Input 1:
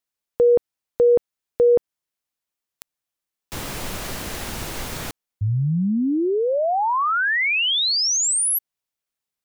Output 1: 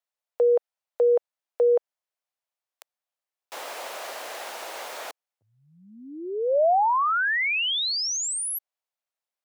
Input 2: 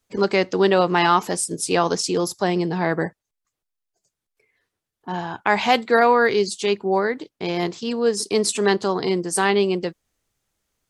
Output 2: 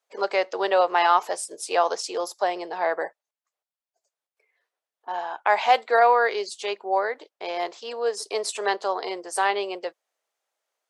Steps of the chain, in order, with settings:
four-pole ladder high-pass 500 Hz, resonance 40%
high-shelf EQ 5,300 Hz −6 dB
level +4.5 dB

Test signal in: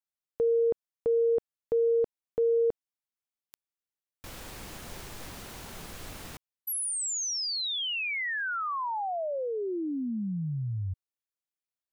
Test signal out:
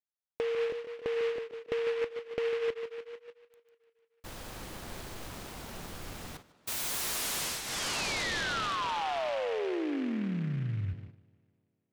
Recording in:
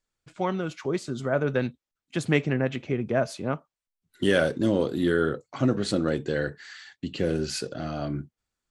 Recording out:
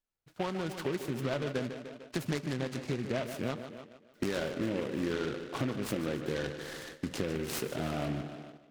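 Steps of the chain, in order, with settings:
downward compressor 8 to 1, threshold −30 dBFS
parametric band 4,000 Hz −8 dB 0.23 octaves
tape delay 149 ms, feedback 75%, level −9 dB, low-pass 3,900 Hz
noise gate −47 dBFS, range −9 dB
short delay modulated by noise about 1,800 Hz, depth 0.078 ms

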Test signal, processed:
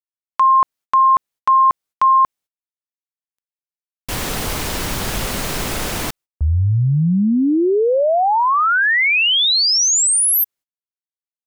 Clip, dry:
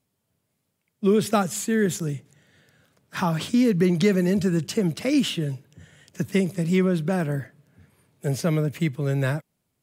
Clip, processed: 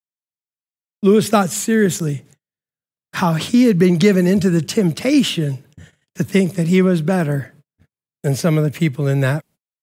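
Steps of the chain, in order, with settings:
noise gate −49 dBFS, range −45 dB
level +7 dB

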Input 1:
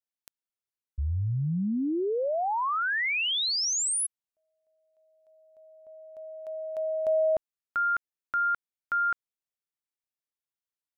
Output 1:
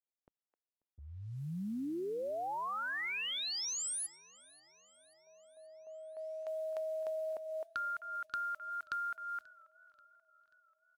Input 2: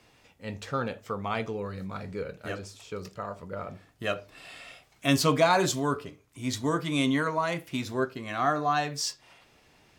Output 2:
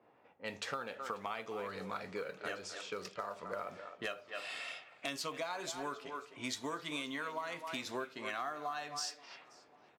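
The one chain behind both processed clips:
meter weighting curve A
far-end echo of a speakerphone 260 ms, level −13 dB
downward compressor 20 to 1, threshold −38 dBFS
noise that follows the level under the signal 31 dB
wave folding −29 dBFS
low-pass that shuts in the quiet parts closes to 580 Hz, open at −41 dBFS
feedback echo with a swinging delay time 535 ms, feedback 56%, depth 98 cents, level −24 dB
level +2 dB

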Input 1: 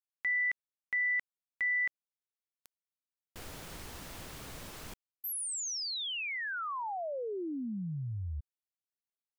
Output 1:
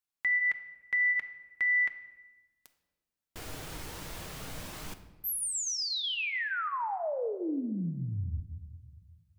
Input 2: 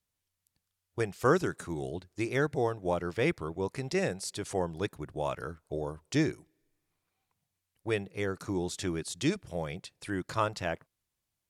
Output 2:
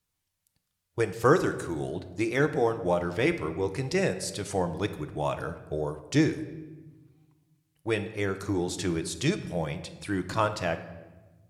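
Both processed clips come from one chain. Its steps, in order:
flanger 0.2 Hz, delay 0.7 ms, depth 3.4 ms, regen −70%
rectangular room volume 750 cubic metres, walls mixed, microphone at 0.53 metres
level +7.5 dB

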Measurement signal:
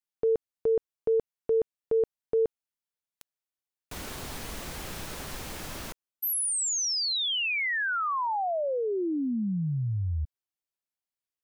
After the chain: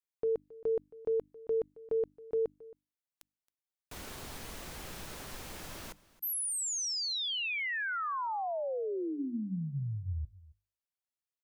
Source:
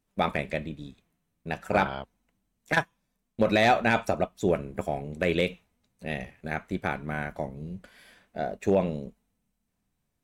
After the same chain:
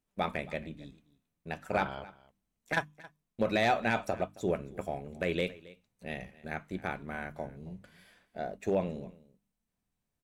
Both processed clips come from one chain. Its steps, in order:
mains-hum notches 50/100/150/200/250/300 Hz
on a send: single-tap delay 271 ms −20.5 dB
on the sum: level −6 dB

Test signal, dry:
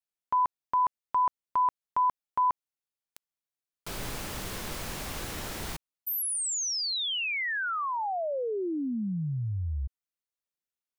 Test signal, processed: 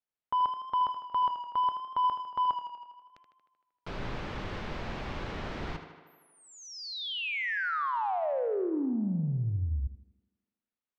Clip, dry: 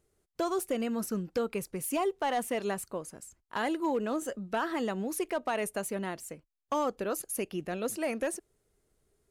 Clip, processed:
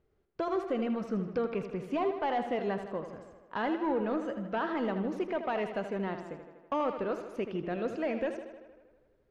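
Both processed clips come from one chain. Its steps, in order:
high-shelf EQ 5,800 Hz −10 dB
hum removal 340.3 Hz, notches 9
soft clipping −23.5 dBFS
high-frequency loss of the air 200 metres
tape delay 79 ms, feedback 72%, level −8 dB, low-pass 5,500 Hz
level +1.5 dB

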